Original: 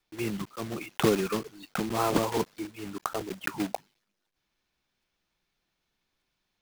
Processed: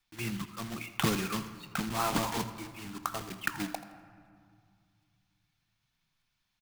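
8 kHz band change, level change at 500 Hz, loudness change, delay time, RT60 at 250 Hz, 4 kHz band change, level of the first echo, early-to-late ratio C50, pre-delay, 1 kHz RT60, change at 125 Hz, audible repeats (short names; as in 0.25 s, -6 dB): +0.5 dB, -10.0 dB, -3.5 dB, 83 ms, 3.1 s, 0.0 dB, -16.0 dB, 11.0 dB, 4 ms, 2.3 s, -1.5 dB, 2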